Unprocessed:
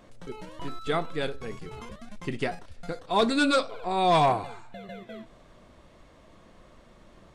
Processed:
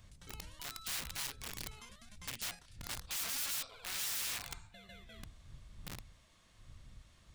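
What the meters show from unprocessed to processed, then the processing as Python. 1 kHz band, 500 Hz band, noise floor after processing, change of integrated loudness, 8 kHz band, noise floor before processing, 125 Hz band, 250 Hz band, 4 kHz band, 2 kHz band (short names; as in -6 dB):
-25.0 dB, -30.0 dB, -65 dBFS, -13.0 dB, +6.5 dB, -55 dBFS, -15.0 dB, -26.0 dB, -7.0 dB, -11.5 dB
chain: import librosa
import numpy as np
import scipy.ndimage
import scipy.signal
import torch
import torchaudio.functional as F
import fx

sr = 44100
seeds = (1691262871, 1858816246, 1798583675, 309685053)

y = fx.dmg_wind(x, sr, seeds[0], corner_hz=80.0, level_db=-37.0)
y = fx.high_shelf(y, sr, hz=3000.0, db=7.0)
y = (np.mod(10.0 ** (26.0 / 20.0) * y + 1.0, 2.0) - 1.0) / 10.0 ** (26.0 / 20.0)
y = fx.tone_stack(y, sr, knobs='5-5-5')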